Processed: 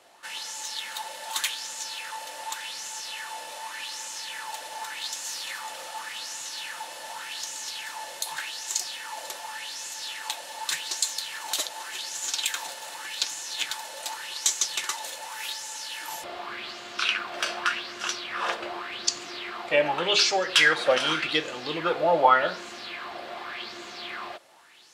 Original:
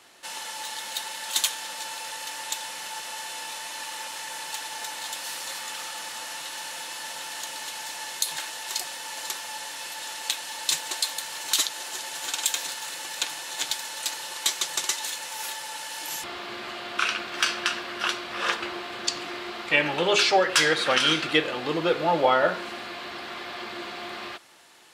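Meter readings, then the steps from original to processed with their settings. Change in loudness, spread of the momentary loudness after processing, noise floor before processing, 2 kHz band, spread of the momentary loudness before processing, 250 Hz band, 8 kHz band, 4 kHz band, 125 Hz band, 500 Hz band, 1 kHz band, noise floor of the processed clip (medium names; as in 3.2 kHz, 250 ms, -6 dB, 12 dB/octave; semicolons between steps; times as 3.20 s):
-1.0 dB, 13 LU, -38 dBFS, -0.5 dB, 13 LU, -5.0 dB, -1.0 dB, -1.0 dB, -5.5 dB, -1.0 dB, +0.5 dB, -41 dBFS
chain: sweeping bell 0.86 Hz 570–7000 Hz +13 dB; trim -5.5 dB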